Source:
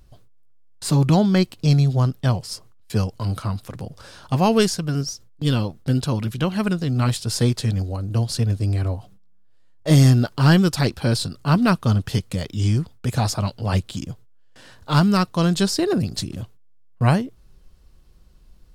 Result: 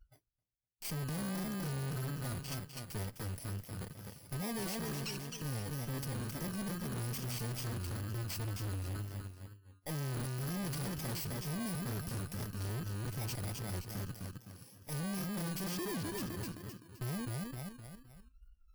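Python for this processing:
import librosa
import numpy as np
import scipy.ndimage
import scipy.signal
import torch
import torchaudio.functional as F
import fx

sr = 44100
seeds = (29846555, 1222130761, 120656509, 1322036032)

p1 = fx.bit_reversed(x, sr, seeds[0], block=32)
p2 = fx.level_steps(p1, sr, step_db=10)
p3 = p2 + fx.echo_feedback(p2, sr, ms=258, feedback_pct=39, wet_db=-7.5, dry=0)
p4 = fx.tube_stage(p3, sr, drive_db=33.0, bias=0.45)
p5 = fx.noise_reduce_blind(p4, sr, reduce_db=21)
p6 = fx.wow_flutter(p5, sr, seeds[1], rate_hz=2.1, depth_cents=71.0)
y = F.gain(torch.from_numpy(p6), -3.5).numpy()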